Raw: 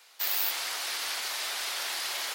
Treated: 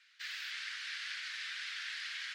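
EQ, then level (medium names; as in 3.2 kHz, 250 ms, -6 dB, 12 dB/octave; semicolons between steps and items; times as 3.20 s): elliptic high-pass 1.6 kHz, stop band 80 dB; distance through air 110 m; treble shelf 2.8 kHz -12 dB; +2.0 dB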